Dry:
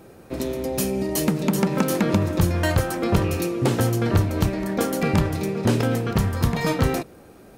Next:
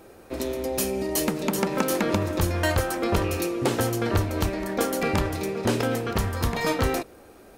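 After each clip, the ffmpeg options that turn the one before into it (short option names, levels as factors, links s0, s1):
-af "equalizer=f=150:t=o:w=1.2:g=-10.5"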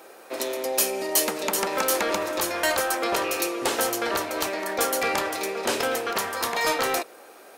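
-filter_complex "[0:a]highpass=560,acrossover=split=4400[s0][s1];[s0]asoftclip=type=tanh:threshold=0.0631[s2];[s2][s1]amix=inputs=2:normalize=0,volume=2"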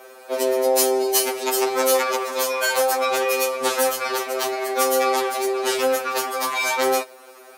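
-af "highpass=250,afftfilt=real='re*2.45*eq(mod(b,6),0)':imag='im*2.45*eq(mod(b,6),0)':win_size=2048:overlap=0.75,volume=1.78"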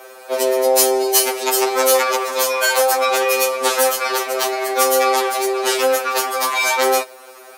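-af "acontrast=21,bass=f=250:g=-12,treble=f=4000:g=1"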